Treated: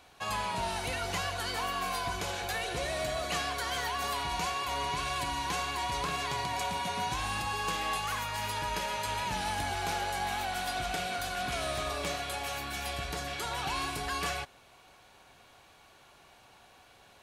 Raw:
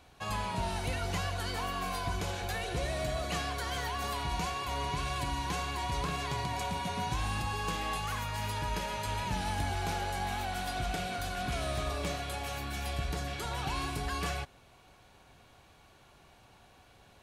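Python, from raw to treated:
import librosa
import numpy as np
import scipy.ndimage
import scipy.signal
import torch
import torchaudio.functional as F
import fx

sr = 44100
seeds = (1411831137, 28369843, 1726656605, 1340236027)

y = fx.low_shelf(x, sr, hz=290.0, db=-10.5)
y = y * 10.0 ** (3.5 / 20.0)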